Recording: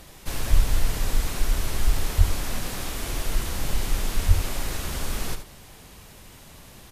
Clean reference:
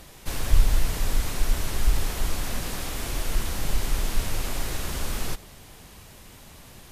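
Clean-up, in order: 2.17–2.29 s: high-pass 140 Hz 24 dB/octave; 4.27–4.39 s: high-pass 140 Hz 24 dB/octave; inverse comb 73 ms -9.5 dB

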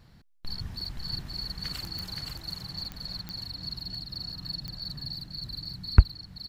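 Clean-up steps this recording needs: de-click; inverse comb 524 ms -3.5 dB

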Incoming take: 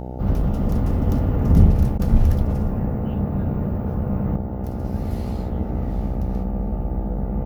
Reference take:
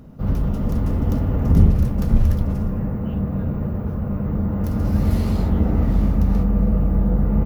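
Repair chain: de-hum 62.9 Hz, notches 14; interpolate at 1.98 s, 13 ms; gain correction +7.5 dB, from 4.36 s

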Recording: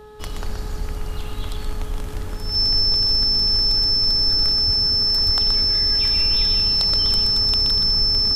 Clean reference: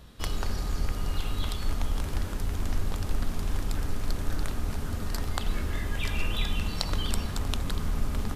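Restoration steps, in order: de-hum 424.4 Hz, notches 4; band-stop 5.3 kHz, Q 30; de-plosive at 1.52/4.66/5.25 s; inverse comb 125 ms -6 dB

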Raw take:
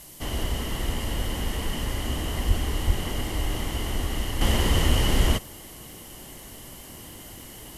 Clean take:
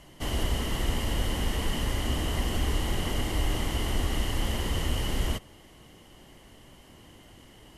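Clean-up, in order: de-click; de-plosive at 2.47/2.86 s; noise reduction 9 dB, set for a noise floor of -43 dBFS; gain correction -7.5 dB, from 4.41 s

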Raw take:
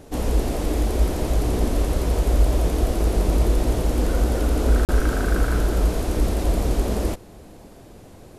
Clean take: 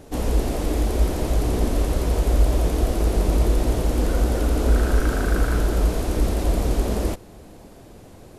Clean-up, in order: interpolate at 4.85 s, 38 ms

